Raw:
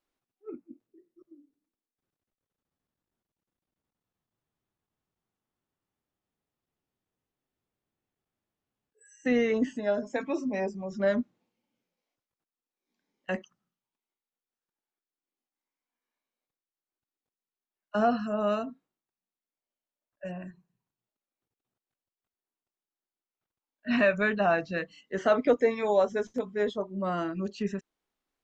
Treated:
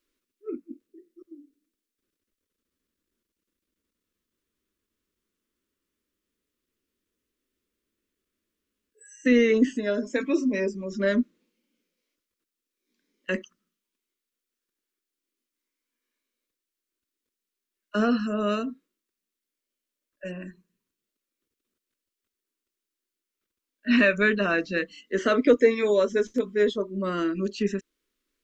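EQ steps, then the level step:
phaser with its sweep stopped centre 320 Hz, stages 4
+8.0 dB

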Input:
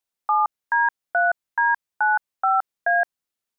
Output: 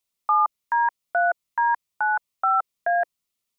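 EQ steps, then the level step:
thirty-one-band graphic EQ 315 Hz −6 dB, 500 Hz −6 dB, 800 Hz −9 dB, 1,600 Hz −12 dB
+5.0 dB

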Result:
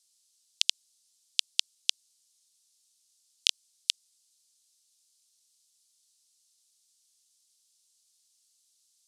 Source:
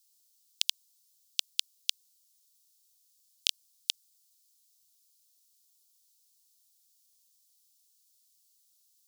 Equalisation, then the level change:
low-pass filter 10,000 Hz 24 dB per octave
+3.5 dB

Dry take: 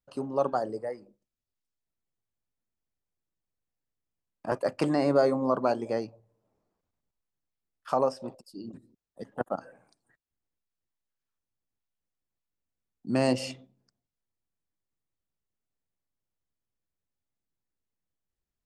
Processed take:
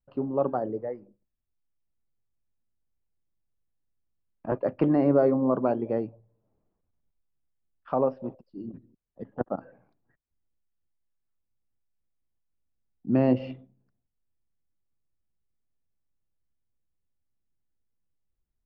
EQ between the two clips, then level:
low-pass filter 3,100 Hz 24 dB per octave
spectral tilt −2.5 dB per octave
dynamic equaliser 330 Hz, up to +4 dB, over −35 dBFS, Q 0.84
−3.5 dB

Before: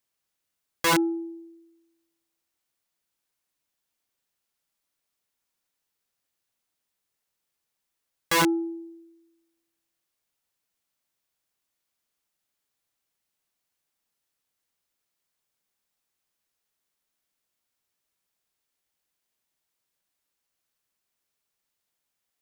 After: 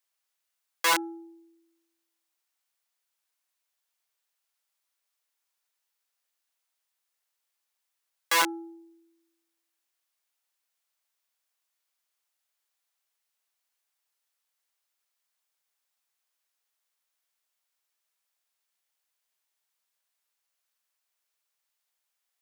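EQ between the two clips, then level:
high-pass filter 660 Hz 12 dB per octave
0.0 dB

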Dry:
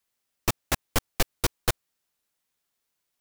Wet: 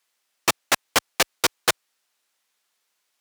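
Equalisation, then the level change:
meter weighting curve A
+8.0 dB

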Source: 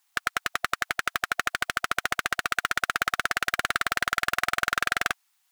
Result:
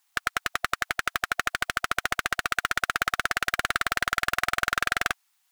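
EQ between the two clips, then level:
low-shelf EQ 84 Hz +6 dB
0.0 dB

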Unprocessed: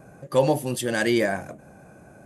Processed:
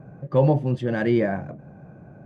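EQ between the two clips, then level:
head-to-tape spacing loss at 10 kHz 38 dB
parametric band 140 Hz +8 dB 1 octave
+1.5 dB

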